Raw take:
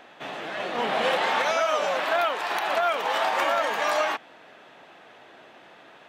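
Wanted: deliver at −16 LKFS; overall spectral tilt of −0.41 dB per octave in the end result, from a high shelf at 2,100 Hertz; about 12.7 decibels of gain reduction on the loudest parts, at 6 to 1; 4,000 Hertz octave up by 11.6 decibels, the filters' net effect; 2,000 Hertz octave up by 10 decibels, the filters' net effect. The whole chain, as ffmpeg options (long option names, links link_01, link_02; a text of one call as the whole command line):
ffmpeg -i in.wav -af "equalizer=frequency=2000:width_type=o:gain=8.5,highshelf=frequency=2100:gain=3.5,equalizer=frequency=4000:width_type=o:gain=8.5,acompressor=threshold=-28dB:ratio=6,volume=13dB" out.wav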